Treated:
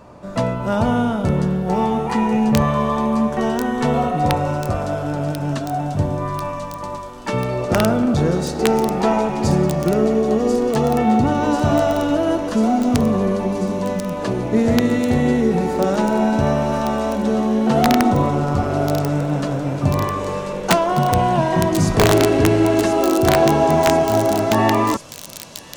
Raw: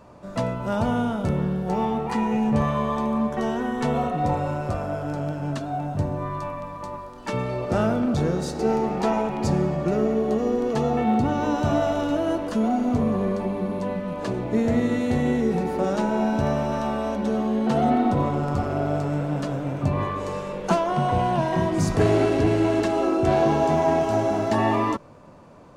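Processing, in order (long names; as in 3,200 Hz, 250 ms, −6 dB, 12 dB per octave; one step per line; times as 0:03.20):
wrap-around overflow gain 10.5 dB
delay with a high-pass on its return 1,041 ms, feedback 76%, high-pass 4,700 Hz, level −5 dB
level +5.5 dB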